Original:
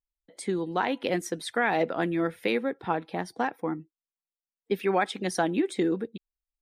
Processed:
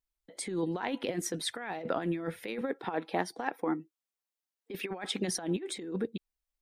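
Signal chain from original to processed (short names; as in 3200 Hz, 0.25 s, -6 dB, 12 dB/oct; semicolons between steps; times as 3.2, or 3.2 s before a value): 2.61–4.91 HPF 240 Hz 12 dB/oct; negative-ratio compressor -30 dBFS, ratio -0.5; gain -2 dB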